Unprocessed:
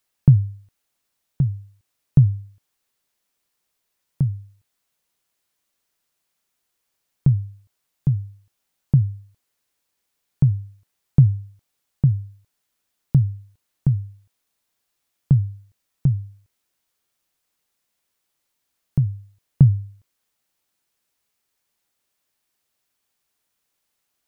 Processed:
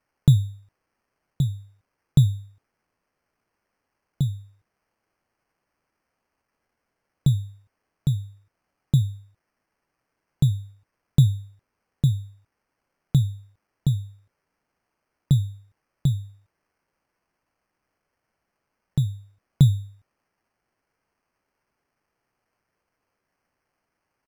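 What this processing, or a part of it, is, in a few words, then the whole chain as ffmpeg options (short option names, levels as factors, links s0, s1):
crushed at another speed: -af "asetrate=35280,aresample=44100,acrusher=samples=15:mix=1:aa=0.000001,asetrate=55125,aresample=44100,volume=0.708"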